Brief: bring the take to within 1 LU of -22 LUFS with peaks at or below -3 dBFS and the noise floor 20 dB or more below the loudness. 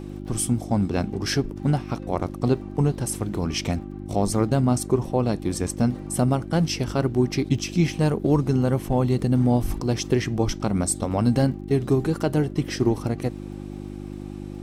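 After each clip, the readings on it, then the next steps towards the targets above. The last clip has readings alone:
ticks 36/s; hum 50 Hz; harmonics up to 350 Hz; hum level -33 dBFS; loudness -24.0 LUFS; peak -8.5 dBFS; loudness target -22.0 LUFS
-> de-click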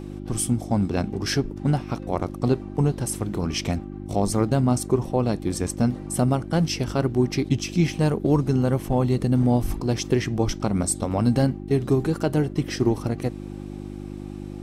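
ticks 0.14/s; hum 50 Hz; harmonics up to 350 Hz; hum level -33 dBFS
-> de-hum 50 Hz, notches 7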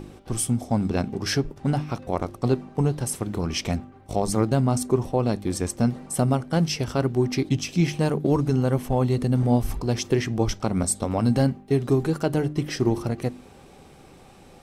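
hum none; loudness -24.5 LUFS; peak -9.0 dBFS; loudness target -22.0 LUFS
-> gain +2.5 dB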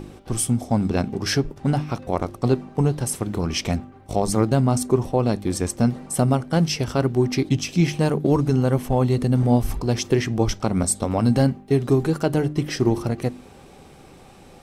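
loudness -22.0 LUFS; peak -6.5 dBFS; noise floor -47 dBFS

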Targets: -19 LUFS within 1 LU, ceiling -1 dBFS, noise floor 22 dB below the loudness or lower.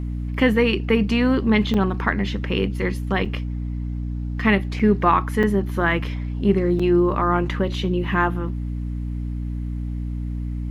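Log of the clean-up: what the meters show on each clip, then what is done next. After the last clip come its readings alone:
dropouts 5; longest dropout 5.4 ms; hum 60 Hz; harmonics up to 300 Hz; hum level -24 dBFS; loudness -22.0 LUFS; peak -4.5 dBFS; loudness target -19.0 LUFS
-> interpolate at 1.74/3.25/4.79/5.43/6.79, 5.4 ms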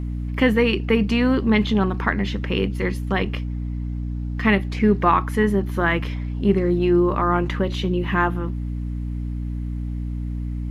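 dropouts 0; hum 60 Hz; harmonics up to 300 Hz; hum level -24 dBFS
-> de-hum 60 Hz, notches 5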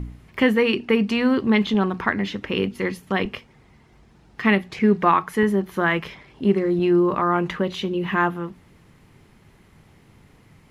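hum none; loudness -21.5 LUFS; peak -5.5 dBFS; loudness target -19.0 LUFS
-> gain +2.5 dB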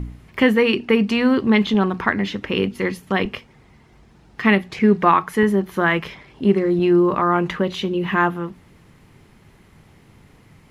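loudness -19.0 LUFS; peak -3.0 dBFS; noise floor -52 dBFS

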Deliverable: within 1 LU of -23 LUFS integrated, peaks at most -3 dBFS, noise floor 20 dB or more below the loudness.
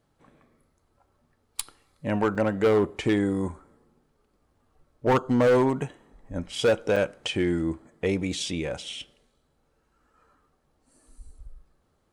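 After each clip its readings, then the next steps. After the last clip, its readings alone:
clipped 1.0%; flat tops at -16.0 dBFS; dropouts 2; longest dropout 5.0 ms; loudness -26.0 LUFS; peak -16.0 dBFS; loudness target -23.0 LUFS
-> clip repair -16 dBFS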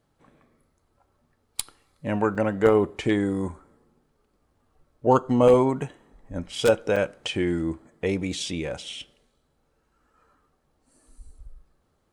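clipped 0.0%; dropouts 2; longest dropout 5.0 ms
-> interpolate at 2.35/6.96, 5 ms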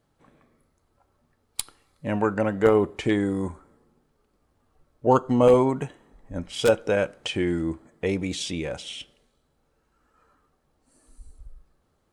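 dropouts 0; loudness -24.5 LUFS; peak -7.0 dBFS; loudness target -23.0 LUFS
-> gain +1.5 dB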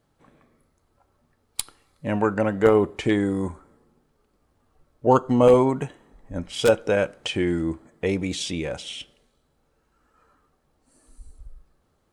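loudness -23.0 LUFS; peak -5.5 dBFS; noise floor -69 dBFS

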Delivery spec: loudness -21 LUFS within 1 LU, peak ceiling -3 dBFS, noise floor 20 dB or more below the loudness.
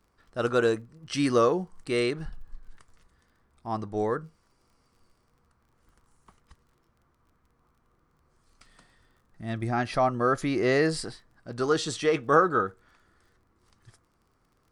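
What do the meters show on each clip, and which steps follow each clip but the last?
ticks 24/s; loudness -27.0 LUFS; peak -8.0 dBFS; loudness target -21.0 LUFS
-> de-click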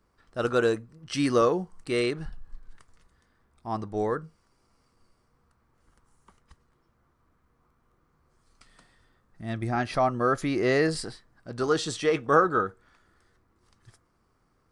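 ticks 0/s; loudness -27.0 LUFS; peak -8.0 dBFS; loudness target -21.0 LUFS
-> gain +6 dB; limiter -3 dBFS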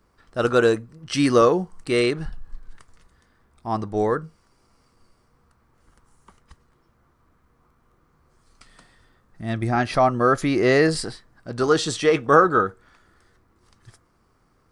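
loudness -21.0 LUFS; peak -3.0 dBFS; noise floor -64 dBFS

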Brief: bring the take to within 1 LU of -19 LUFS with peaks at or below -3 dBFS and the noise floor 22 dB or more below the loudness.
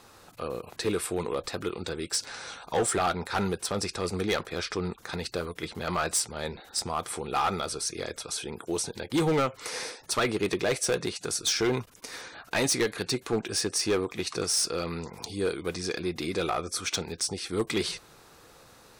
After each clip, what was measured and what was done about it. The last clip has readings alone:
clipped 1.0%; flat tops at -20.5 dBFS; loudness -30.0 LUFS; peak -20.5 dBFS; loudness target -19.0 LUFS
-> clip repair -20.5 dBFS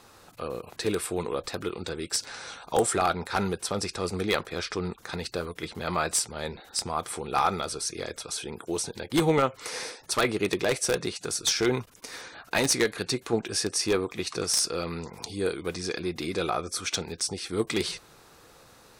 clipped 0.0%; loudness -29.0 LUFS; peak -11.5 dBFS; loudness target -19.0 LUFS
-> gain +10 dB; limiter -3 dBFS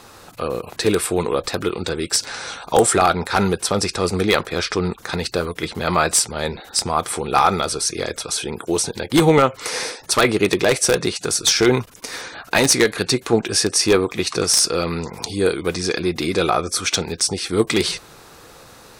loudness -19.5 LUFS; peak -3.0 dBFS; noise floor -45 dBFS

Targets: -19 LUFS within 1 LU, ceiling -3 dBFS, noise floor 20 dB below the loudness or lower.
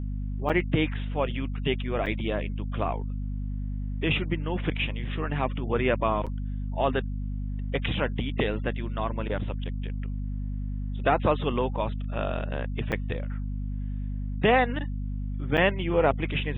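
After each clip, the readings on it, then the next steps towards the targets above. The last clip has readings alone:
dropouts 5; longest dropout 6.4 ms; hum 50 Hz; harmonics up to 250 Hz; hum level -28 dBFS; loudness -29.0 LUFS; peak -9.0 dBFS; loudness target -19.0 LUFS
-> interpolate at 0.49/2.06/6.26/12.92/15.57, 6.4 ms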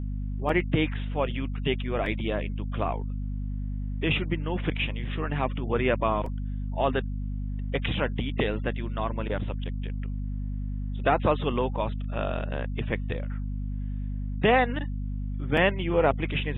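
dropouts 0; hum 50 Hz; harmonics up to 250 Hz; hum level -28 dBFS
-> de-hum 50 Hz, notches 5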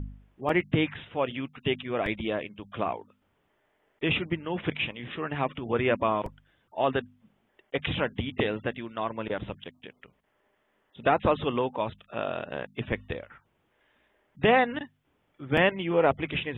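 hum none; loudness -29.0 LUFS; peak -9.5 dBFS; loudness target -19.0 LUFS
-> gain +10 dB; limiter -3 dBFS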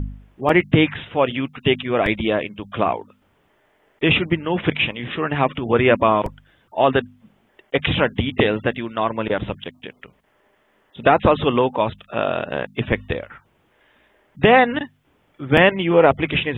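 loudness -19.5 LUFS; peak -3.0 dBFS; noise floor -62 dBFS

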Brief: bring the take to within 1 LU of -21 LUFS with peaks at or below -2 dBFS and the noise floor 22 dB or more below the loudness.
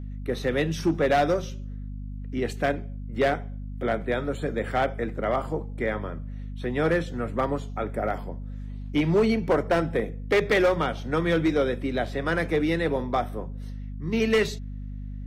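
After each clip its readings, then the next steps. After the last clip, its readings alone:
clipped 1.0%; flat tops at -16.0 dBFS; hum 50 Hz; harmonics up to 250 Hz; hum level -33 dBFS; loudness -26.0 LUFS; peak -16.0 dBFS; loudness target -21.0 LUFS
-> clip repair -16 dBFS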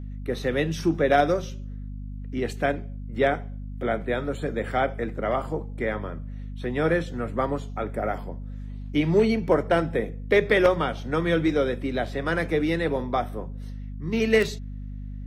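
clipped 0.0%; hum 50 Hz; harmonics up to 250 Hz; hum level -32 dBFS
-> de-hum 50 Hz, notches 5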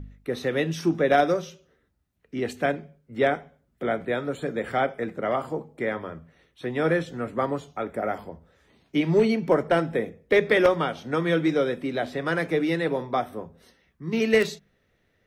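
hum none; loudness -25.5 LUFS; peak -7.0 dBFS; loudness target -21.0 LUFS
-> gain +4.5 dB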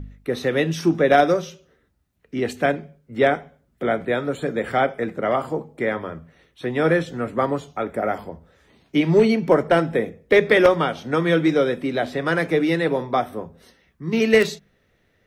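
loudness -21.0 LUFS; peak -2.5 dBFS; noise floor -65 dBFS

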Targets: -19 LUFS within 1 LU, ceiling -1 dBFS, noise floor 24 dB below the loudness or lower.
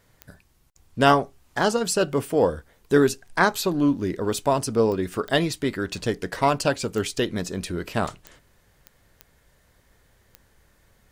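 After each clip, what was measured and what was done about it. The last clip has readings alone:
clicks 8; loudness -23.5 LUFS; peak -3.5 dBFS; loudness target -19.0 LUFS
-> de-click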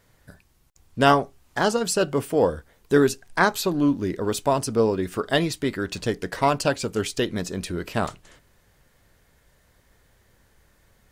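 clicks 0; loudness -23.5 LUFS; peak -3.5 dBFS; loudness target -19.0 LUFS
-> gain +4.5 dB; limiter -1 dBFS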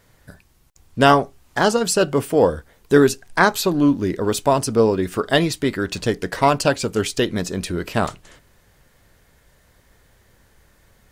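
loudness -19.5 LUFS; peak -1.0 dBFS; noise floor -58 dBFS

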